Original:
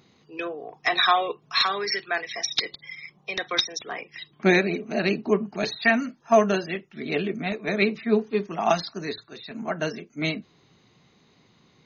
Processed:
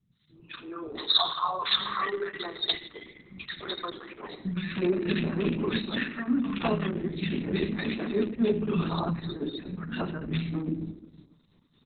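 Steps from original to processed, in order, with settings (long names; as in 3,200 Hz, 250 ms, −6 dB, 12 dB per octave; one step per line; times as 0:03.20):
loose part that buzzes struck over −28 dBFS, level −14 dBFS
0:08.46–0:09.37: notch filter 610 Hz, Q 17
downward expander −53 dBFS
0:00.75–0:01.43: drawn EQ curve 150 Hz 0 dB, 290 Hz −29 dB, 410 Hz −11 dB, 940 Hz +10 dB, 1,700 Hz −10 dB, 2,500 Hz −8 dB, 4,400 Hz +14 dB, 6,800 Hz −5 dB, 9,600 Hz −17 dB
brickwall limiter −14.5 dBFS, peak gain reduction 11.5 dB
two-band tremolo in antiphase 3.3 Hz, depth 70%, crossover 1,100 Hz
three-band delay without the direct sound lows, highs, mids 110/320 ms, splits 190/1,400 Hz
convolution reverb RT60 1.1 s, pre-delay 3 ms, DRR 8.5 dB
level +1.5 dB
Opus 6 kbit/s 48,000 Hz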